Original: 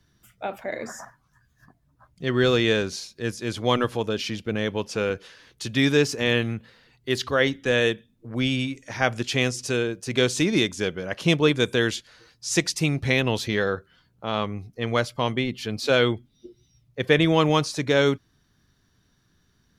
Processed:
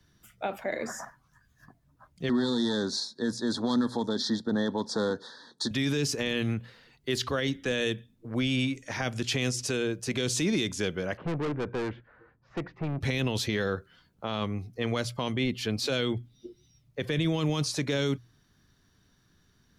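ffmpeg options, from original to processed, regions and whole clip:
-filter_complex "[0:a]asettb=1/sr,asplit=3[a][b][c];[a]atrim=end=2.294[d];[b]atrim=start=2.29:end=5.71,asetpts=PTS-STARTPTS,afade=t=in:d=0.004:c=qsin,afade=t=out:st=3.416:d=0.004:c=qsin,aeval=exprs='clip(val(0),-1,0.0668)':c=same,asuperstop=centerf=2500:order=20:qfactor=1.8,highpass=180,equalizer=f=240:t=q:w=4:g=10,equalizer=f=910:t=q:w=4:g=9,equalizer=f=2.8k:t=q:w=4:g=-7,equalizer=f=4.1k:t=q:w=4:g=8,equalizer=f=6.4k:t=q:w=4:g=-3,lowpass=f=9k:w=0.5412,lowpass=f=9k:w=1.3066[e];[c]atrim=start=5.706[f];[d][e]acrossfade=d=0.004:c1=hsin:c2=qsin[g];[g][f]acrossfade=d=0.004:c1=qsin:c2=hsin,asettb=1/sr,asplit=3[h][i][j];[h]atrim=end=11.174[k];[i]atrim=start=11.17:end=13.01,asetpts=PTS-STARTPTS,afade=t=in:d=0.004:c=qsin,afade=t=out:st=1.836:d=0.004:c=qsin,lowpass=f=1.6k:w=0.5412,lowpass=f=1.6k:w=1.3066,aeval=exprs='(tanh(25.1*val(0)+0.3)-tanh(0.3))/25.1':c=same[l];[j]atrim=start=13.006[m];[k][l]acrossfade=d=0.004:c1=hsin:c2=qsin[n];[n][m]acrossfade=d=0.004:c1=qsin:c2=hsin,bandreject=f=60:t=h:w=6,bandreject=f=120:t=h:w=6,acrossover=split=300|3000[o][p][q];[p]acompressor=threshold=-27dB:ratio=6[r];[o][r][q]amix=inputs=3:normalize=0,alimiter=limit=-19dB:level=0:latency=1:release=16"

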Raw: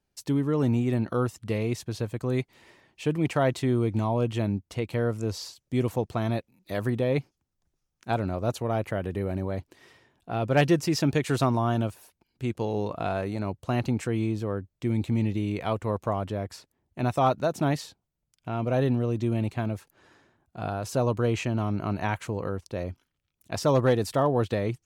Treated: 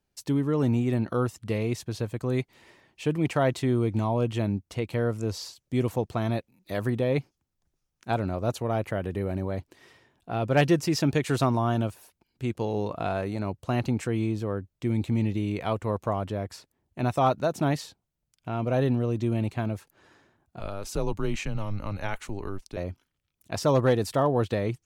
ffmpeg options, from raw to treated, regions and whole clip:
-filter_complex "[0:a]asettb=1/sr,asplit=3[a][b][c];[a]atrim=end=20.594[d];[b]atrim=start=20.59:end=22.77,asetpts=PTS-STARTPTS,afade=t=in:d=0.004:c=qsin,afade=t=out:st=2.176:d=0.004:c=qsin,equalizer=f=700:w=0.47:g=-4.5,afreqshift=-100[e];[c]atrim=start=22.766[f];[d][e]acrossfade=d=0.004:c1=hsin:c2=qsin[g];[g][f]acrossfade=d=0.004:c1=qsin:c2=hsin"

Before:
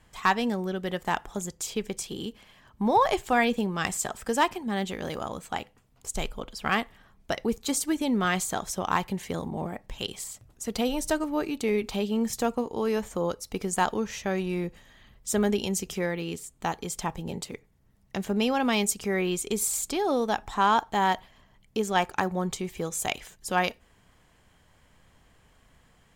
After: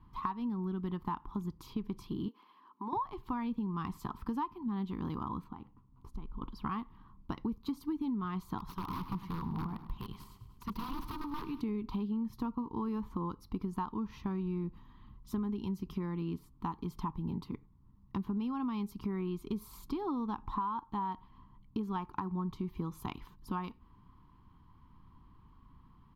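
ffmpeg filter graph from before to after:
-filter_complex "[0:a]asettb=1/sr,asplit=3[a][b][c];[a]atrim=end=2.284[d];[b]atrim=start=2.28:end=2.93,asetpts=PTS-STARTPTS,afade=t=in:d=0.004:c=qsin,afade=t=out:st=0.646:d=0.004:c=qsin,highpass=f=330:w=0.5412,highpass=f=330:w=1.3066,acompressor=threshold=-38dB:ratio=2:attack=3.2:release=140:knee=1:detection=peak[e];[c]atrim=start=2.926[f];[d][e]acrossfade=d=0.004:c1=hsin:c2=qsin[g];[g][f]acrossfade=d=0.004:c1=qsin:c2=hsin,asettb=1/sr,asplit=3[h][i][j];[h]atrim=end=5.444[k];[i]atrim=start=5.44:end=6.42,asetpts=PTS-STARTPTS,afade=t=in:d=0.004:c=qsin,afade=t=out:st=0.976:d=0.004:c=qsin,highshelf=f=2.1k:g=-9,acompressor=threshold=-38dB:ratio=16:attack=3.2:release=140:knee=1:detection=peak[l];[j]atrim=start=6.416[m];[k][l]acrossfade=d=0.004:c1=hsin:c2=qsin[n];[n][m]acrossfade=d=0.004:c1=qsin:c2=hsin,asettb=1/sr,asplit=3[o][p][q];[o]atrim=end=8.584[r];[p]atrim=start=8.58:end=11.61,asetpts=PTS-STARTPTS,afade=t=in:d=0.004:c=qsin,afade=t=out:st=3.026:d=0.004:c=qsin,equalizer=f=310:w=1.7:g=-10,aeval=exprs='(mod(21.1*val(0)+1,2)-1)/21.1':c=same,aecho=1:1:102|204|306|408|510|612:0.2|0.12|0.0718|0.0431|0.0259|0.0155,atrim=end_sample=133623[s];[q]atrim=start=11.606[t];[r][s]acrossfade=d=0.004:c1=hsin:c2=qsin[u];[u][t]acrossfade=d=0.004:c1=qsin:c2=hsin,firequalizer=gain_entry='entry(300,0);entry(590,-29);entry(1000,5);entry(1600,-17);entry(2900,-13);entry(4400,-9);entry(7600,-26);entry(12000,-1)':delay=0.05:min_phase=1,acompressor=threshold=-35dB:ratio=10,aemphasis=mode=reproduction:type=75fm,volume=2dB"

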